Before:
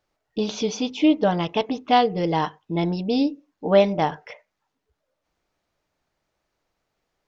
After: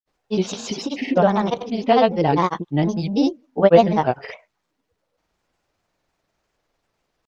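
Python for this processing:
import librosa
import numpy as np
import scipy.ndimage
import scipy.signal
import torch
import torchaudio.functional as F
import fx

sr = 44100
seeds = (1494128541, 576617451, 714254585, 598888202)

y = fx.granulator(x, sr, seeds[0], grain_ms=100.0, per_s=20.0, spray_ms=100.0, spread_st=3)
y = fx.dynamic_eq(y, sr, hz=3400.0, q=0.94, threshold_db=-41.0, ratio=4.0, max_db=-5)
y = F.gain(torch.from_numpy(y), 5.0).numpy()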